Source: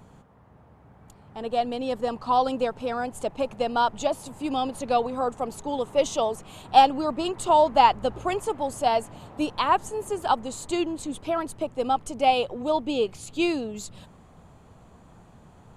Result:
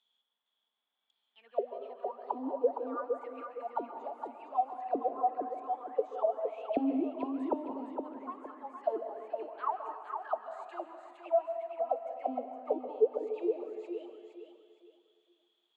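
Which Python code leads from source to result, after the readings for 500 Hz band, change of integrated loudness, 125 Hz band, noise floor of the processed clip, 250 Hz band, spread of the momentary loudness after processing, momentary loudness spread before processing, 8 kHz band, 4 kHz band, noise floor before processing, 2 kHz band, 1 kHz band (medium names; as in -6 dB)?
-7.5 dB, -10.5 dB, under -25 dB, -83 dBFS, -8.5 dB, 12 LU, 11 LU, under -35 dB, under -30 dB, -53 dBFS, -19.5 dB, -13.0 dB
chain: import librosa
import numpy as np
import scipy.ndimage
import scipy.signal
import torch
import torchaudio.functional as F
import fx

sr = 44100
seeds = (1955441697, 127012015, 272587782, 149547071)

y = fx.hpss(x, sr, part='percussive', gain_db=-9)
y = scipy.signal.sosfilt(scipy.signal.butter(12, 200.0, 'highpass', fs=sr, output='sos'), y)
y = fx.auto_wah(y, sr, base_hz=270.0, top_hz=3500.0, q=21.0, full_db=-18.0, direction='down')
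y = fx.echo_feedback(y, sr, ms=463, feedback_pct=31, wet_db=-6)
y = fx.rev_plate(y, sr, seeds[0], rt60_s=1.4, hf_ratio=0.75, predelay_ms=120, drr_db=8.0)
y = F.gain(torch.from_numpy(y), 5.5).numpy()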